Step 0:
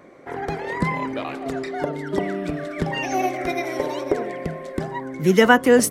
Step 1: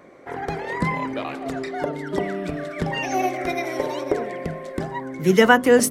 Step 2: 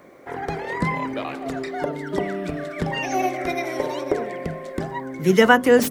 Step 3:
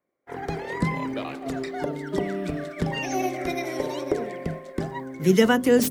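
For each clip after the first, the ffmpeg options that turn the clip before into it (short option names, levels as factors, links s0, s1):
-af "bandreject=f=50:t=h:w=6,bandreject=f=100:t=h:w=6,bandreject=f=150:t=h:w=6,bandreject=f=200:t=h:w=6,bandreject=f=250:t=h:w=6,bandreject=f=300:t=h:w=6,bandreject=f=350:t=h:w=6,bandreject=f=400:t=h:w=6"
-filter_complex "[0:a]acrossover=split=770|4200[s0][s1][s2];[s2]aeval=exprs='(mod(11.9*val(0)+1,2)-1)/11.9':c=same[s3];[s0][s1][s3]amix=inputs=3:normalize=0,acrusher=bits=10:mix=0:aa=0.000001"
-filter_complex "[0:a]agate=range=0.0224:threshold=0.0398:ratio=3:detection=peak,acrossover=split=440|3000[s0][s1][s2];[s1]acompressor=threshold=0.00891:ratio=1.5[s3];[s0][s3][s2]amix=inputs=3:normalize=0"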